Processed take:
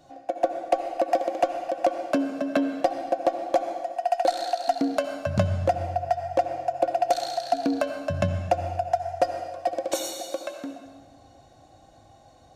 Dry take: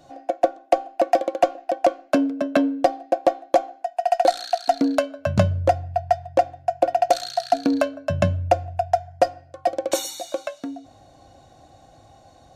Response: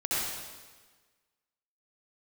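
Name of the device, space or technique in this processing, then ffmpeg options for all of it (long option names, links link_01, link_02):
ducked reverb: -filter_complex "[0:a]asplit=3[link_01][link_02][link_03];[1:a]atrim=start_sample=2205[link_04];[link_02][link_04]afir=irnorm=-1:irlink=0[link_05];[link_03]apad=whole_len=553714[link_06];[link_05][link_06]sidechaincompress=threshold=-24dB:ratio=3:attack=22:release=125,volume=-13dB[link_07];[link_01][link_07]amix=inputs=2:normalize=0,volume=-5.5dB"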